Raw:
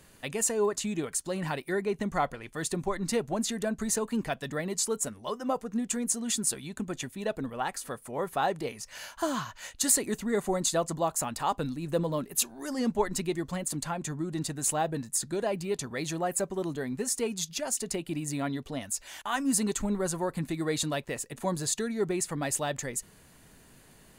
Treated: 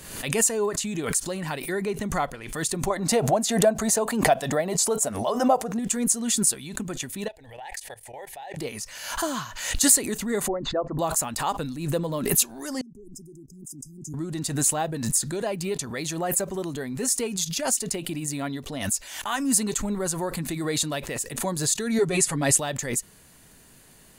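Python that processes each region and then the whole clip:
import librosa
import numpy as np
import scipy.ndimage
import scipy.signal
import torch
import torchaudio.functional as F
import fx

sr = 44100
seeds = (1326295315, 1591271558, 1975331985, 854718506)

y = fx.chain(x, sr, fx.highpass(hz=71.0, slope=6),
    fx.peak_eq(hz=690.0, db=13.5, octaves=0.76), at=(2.9, 5.79))
y = fx.chain(y, sr, fx.curve_eq(hz=(110.0, 180.0, 860.0, 1200.0, 1800.0, 13000.0), db=(0, -21, 5, -23, 5, -7)),
    fx.level_steps(step_db=20), at=(7.28, 8.57))
y = fx.chain(y, sr, fx.envelope_sharpen(power=1.5),
    fx.lowpass(hz=1800.0, slope=24),
    fx.peak_eq(hz=170.0, db=-15.0, octaves=0.22), at=(10.48, 10.99))
y = fx.chain(y, sr, fx.brickwall_bandstop(low_hz=420.0, high_hz=4900.0),
    fx.level_steps(step_db=23),
    fx.band_widen(depth_pct=70), at=(12.81, 14.14))
y = fx.chain(y, sr, fx.lowpass(hz=12000.0, slope=24),
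    fx.high_shelf(hz=9300.0, db=2.5),
    fx.comb(ms=7.2, depth=0.98), at=(21.98, 22.58))
y = fx.high_shelf(y, sr, hz=3700.0, db=6.0)
y = fx.pre_swell(y, sr, db_per_s=62.0)
y = y * librosa.db_to_amplitude(1.0)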